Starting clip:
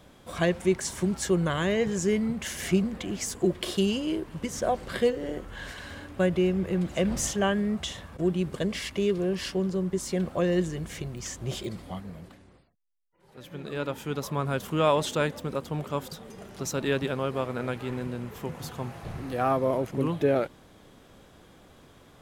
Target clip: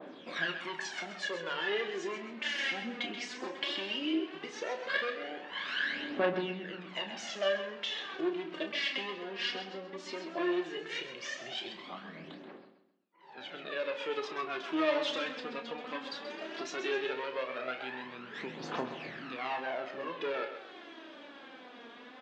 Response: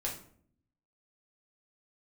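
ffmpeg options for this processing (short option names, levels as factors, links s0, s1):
-filter_complex "[0:a]asoftclip=type=hard:threshold=0.0631,acompressor=threshold=0.01:ratio=4,aphaser=in_gain=1:out_gain=1:delay=4.3:decay=0.71:speed=0.16:type=triangular,highpass=f=280:w=0.5412,highpass=f=280:w=1.3066,equalizer=f=470:t=q:w=4:g=-3,equalizer=f=1700:t=q:w=4:g=4,equalizer=f=2700:t=q:w=4:g=3,lowpass=f=4200:w=0.5412,lowpass=f=4200:w=1.3066,asplit=2[s0][s1];[s1]adelay=31,volume=0.376[s2];[s0][s2]amix=inputs=2:normalize=0,aecho=1:1:131|262|393|524:0.316|0.104|0.0344|0.0114,asplit=2[s3][s4];[1:a]atrim=start_sample=2205,lowshelf=f=380:g=9.5[s5];[s4][s5]afir=irnorm=-1:irlink=0,volume=0.224[s6];[s3][s6]amix=inputs=2:normalize=0,adynamicequalizer=threshold=0.00398:dfrequency=1500:dqfactor=0.7:tfrequency=1500:tqfactor=0.7:attack=5:release=100:ratio=0.375:range=2.5:mode=boostabove:tftype=highshelf"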